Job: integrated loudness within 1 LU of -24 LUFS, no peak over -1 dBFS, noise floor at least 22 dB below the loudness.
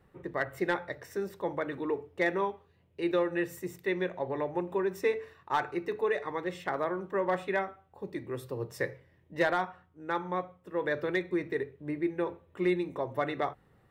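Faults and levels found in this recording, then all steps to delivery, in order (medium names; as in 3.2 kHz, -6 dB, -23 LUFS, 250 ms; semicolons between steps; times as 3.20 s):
loudness -33.0 LUFS; peak level -17.5 dBFS; loudness target -24.0 LUFS
-> trim +9 dB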